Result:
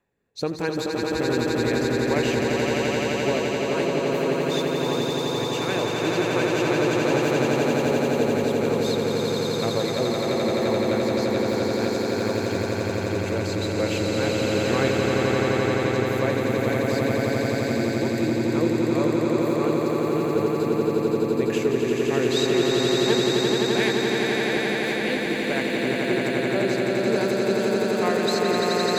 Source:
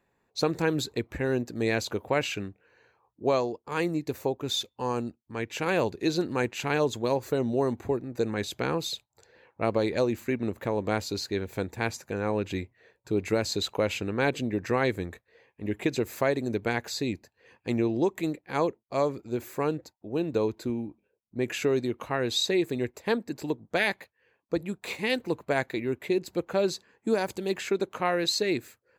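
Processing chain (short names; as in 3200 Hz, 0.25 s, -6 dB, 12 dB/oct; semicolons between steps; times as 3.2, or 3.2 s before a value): rotary speaker horn 1.2 Hz; swelling echo 86 ms, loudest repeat 8, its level -3.5 dB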